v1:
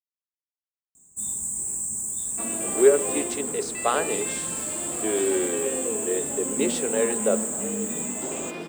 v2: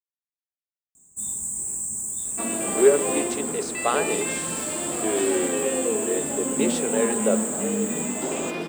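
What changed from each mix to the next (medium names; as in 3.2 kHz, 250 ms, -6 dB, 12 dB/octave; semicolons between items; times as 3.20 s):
second sound +5.0 dB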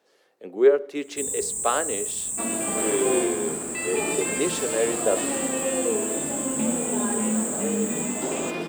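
speech: entry -2.20 s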